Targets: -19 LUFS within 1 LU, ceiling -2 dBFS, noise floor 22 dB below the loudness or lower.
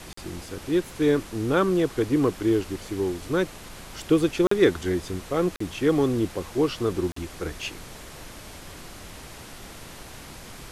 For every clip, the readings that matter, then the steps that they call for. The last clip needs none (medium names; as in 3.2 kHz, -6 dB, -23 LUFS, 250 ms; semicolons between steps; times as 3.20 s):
dropouts 4; longest dropout 44 ms; noise floor -43 dBFS; noise floor target -47 dBFS; loudness -25.0 LUFS; peak level -7.5 dBFS; loudness target -19.0 LUFS
-> interpolate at 0.13/4.47/5.56/7.12 s, 44 ms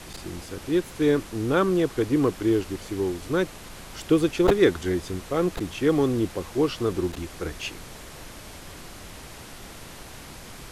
dropouts 0; noise floor -43 dBFS; noise floor target -47 dBFS
-> noise print and reduce 6 dB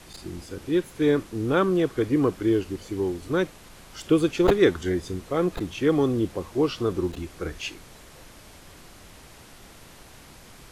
noise floor -49 dBFS; loudness -25.0 LUFS; peak level -6.0 dBFS; loudness target -19.0 LUFS
-> trim +6 dB; peak limiter -2 dBFS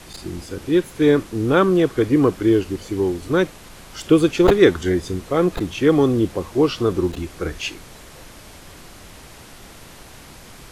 loudness -19.0 LUFS; peak level -2.0 dBFS; noise floor -43 dBFS